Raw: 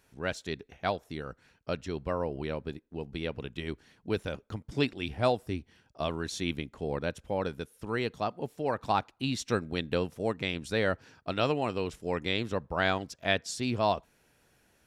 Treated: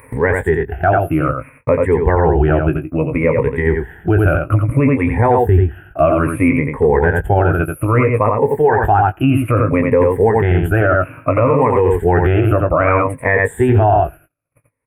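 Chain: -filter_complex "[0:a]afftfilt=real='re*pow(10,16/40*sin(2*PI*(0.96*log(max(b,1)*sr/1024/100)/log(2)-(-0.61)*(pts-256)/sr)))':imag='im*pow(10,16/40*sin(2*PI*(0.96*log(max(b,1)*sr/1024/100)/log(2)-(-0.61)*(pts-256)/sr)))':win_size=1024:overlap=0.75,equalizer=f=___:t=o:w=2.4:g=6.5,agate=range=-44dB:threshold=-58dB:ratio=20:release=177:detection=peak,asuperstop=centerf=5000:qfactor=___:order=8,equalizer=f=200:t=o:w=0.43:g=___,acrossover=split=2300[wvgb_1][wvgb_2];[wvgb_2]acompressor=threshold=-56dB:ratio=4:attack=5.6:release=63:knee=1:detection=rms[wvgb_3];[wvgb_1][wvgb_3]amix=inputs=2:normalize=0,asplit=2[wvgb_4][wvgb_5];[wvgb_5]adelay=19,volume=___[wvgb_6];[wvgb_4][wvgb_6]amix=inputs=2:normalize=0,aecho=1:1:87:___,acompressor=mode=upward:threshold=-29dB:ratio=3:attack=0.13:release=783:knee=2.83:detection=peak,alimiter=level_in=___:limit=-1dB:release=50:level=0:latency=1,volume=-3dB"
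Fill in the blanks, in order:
79, 0.67, -15, -9dB, 0.501, 22dB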